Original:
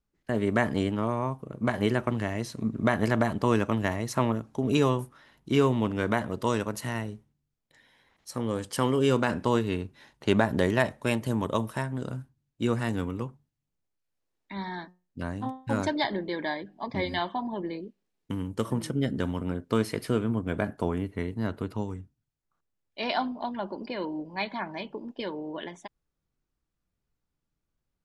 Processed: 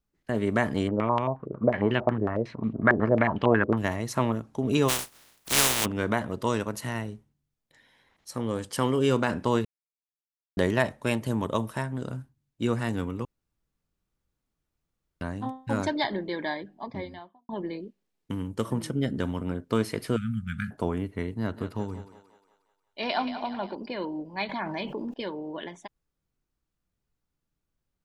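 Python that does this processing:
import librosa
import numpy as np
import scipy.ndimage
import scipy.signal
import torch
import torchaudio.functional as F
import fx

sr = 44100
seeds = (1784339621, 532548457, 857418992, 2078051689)

y = fx.filter_held_lowpass(x, sr, hz=11.0, low_hz=400.0, high_hz=3000.0, at=(0.87, 3.76), fade=0.02)
y = fx.spec_flatten(y, sr, power=0.16, at=(4.88, 5.84), fade=0.02)
y = fx.studio_fade_out(y, sr, start_s=16.56, length_s=0.93)
y = fx.brickwall_bandstop(y, sr, low_hz=240.0, high_hz=1200.0, at=(20.16, 20.71))
y = fx.echo_thinned(y, sr, ms=179, feedback_pct=56, hz=420.0, wet_db=-10.0, at=(21.35, 23.75))
y = fx.env_flatten(y, sr, amount_pct=70, at=(24.49, 25.14))
y = fx.edit(y, sr, fx.silence(start_s=9.65, length_s=0.92),
    fx.room_tone_fill(start_s=13.25, length_s=1.96), tone=tone)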